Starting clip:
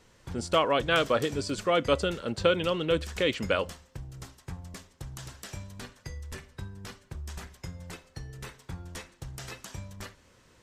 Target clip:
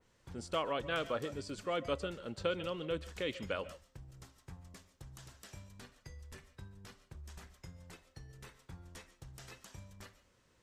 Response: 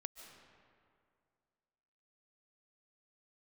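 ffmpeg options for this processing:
-filter_complex "[1:a]atrim=start_sample=2205,atrim=end_sample=6615[a];[0:a][a]afir=irnorm=-1:irlink=0,adynamicequalizer=threshold=0.00631:dfrequency=2600:dqfactor=0.7:tfrequency=2600:tqfactor=0.7:attack=5:release=100:ratio=0.375:range=2:mode=cutabove:tftype=highshelf,volume=-6dB"

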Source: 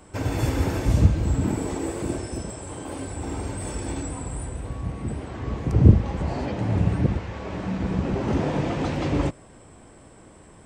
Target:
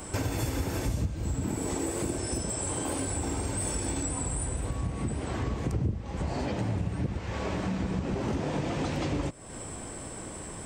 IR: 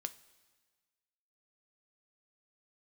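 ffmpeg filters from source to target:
-af "highshelf=f=5.2k:g=10,acompressor=threshold=-36dB:ratio=6,volume=7.5dB"

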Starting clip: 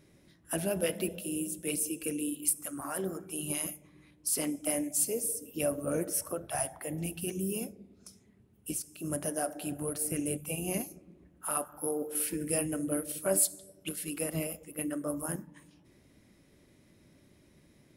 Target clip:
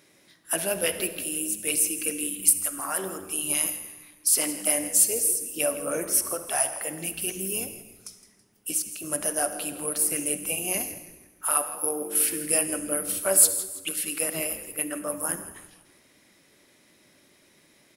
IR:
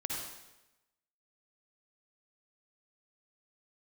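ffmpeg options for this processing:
-filter_complex "[0:a]highpass=f=1k:p=1,asplit=5[a][b][c][d][e];[b]adelay=164,afreqshift=-100,volume=-15dB[f];[c]adelay=328,afreqshift=-200,volume=-23dB[g];[d]adelay=492,afreqshift=-300,volume=-30.9dB[h];[e]adelay=656,afreqshift=-400,volume=-38.9dB[i];[a][f][g][h][i]amix=inputs=5:normalize=0,asplit=2[j][k];[1:a]atrim=start_sample=2205[l];[k][l]afir=irnorm=-1:irlink=0,volume=-11.5dB[m];[j][m]amix=inputs=2:normalize=0,volume=8dB"

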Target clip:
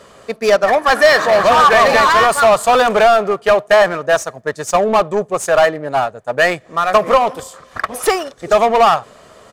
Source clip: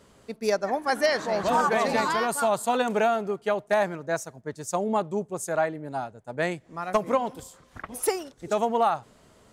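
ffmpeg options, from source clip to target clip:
-filter_complex "[0:a]equalizer=f=1.4k:w=1.5:g=3,asplit=2[a][b];[b]highpass=f=720:p=1,volume=17dB,asoftclip=type=tanh:threshold=-11.5dB[c];[a][c]amix=inputs=2:normalize=0,lowpass=f=5.6k:p=1,volume=-6dB,aecho=1:1:1.7:0.34,asplit=2[d][e];[e]adynamicsmooth=sensitivity=7:basefreq=630,volume=-3dB[f];[d][f]amix=inputs=2:normalize=0,volume=3dB"

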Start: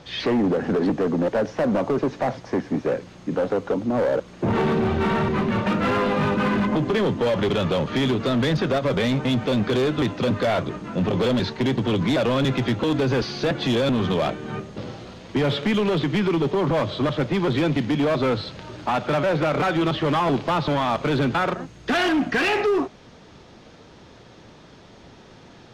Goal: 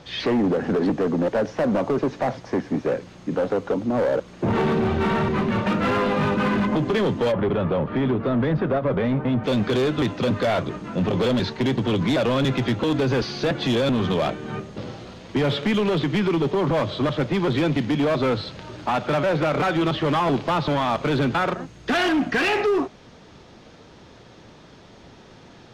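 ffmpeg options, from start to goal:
-filter_complex "[0:a]asplit=3[a][b][c];[a]afade=t=out:st=7.31:d=0.02[d];[b]lowpass=1.6k,afade=t=in:st=7.31:d=0.02,afade=t=out:st=9.43:d=0.02[e];[c]afade=t=in:st=9.43:d=0.02[f];[d][e][f]amix=inputs=3:normalize=0"

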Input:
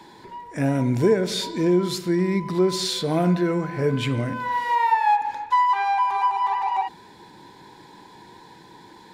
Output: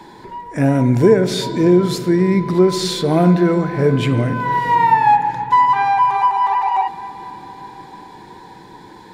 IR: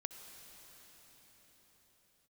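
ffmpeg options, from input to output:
-filter_complex "[0:a]asplit=2[a][b];[1:a]atrim=start_sample=2205,lowpass=2.4k,lowshelf=f=72:g=12[c];[b][c]afir=irnorm=-1:irlink=0,volume=-2dB[d];[a][d]amix=inputs=2:normalize=0,volume=3.5dB"

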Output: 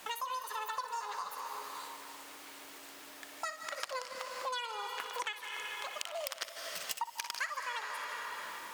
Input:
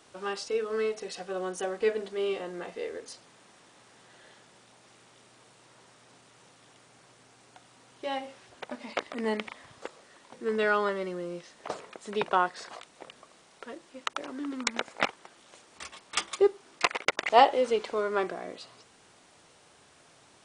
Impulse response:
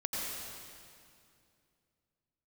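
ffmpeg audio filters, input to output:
-filter_complex "[0:a]asetrate=103194,aresample=44100,asplit=2[a][b];[1:a]atrim=start_sample=2205,adelay=60[c];[b][c]afir=irnorm=-1:irlink=0,volume=-11.5dB[d];[a][d]amix=inputs=2:normalize=0,acompressor=threshold=-44dB:ratio=5,volume=6.5dB"

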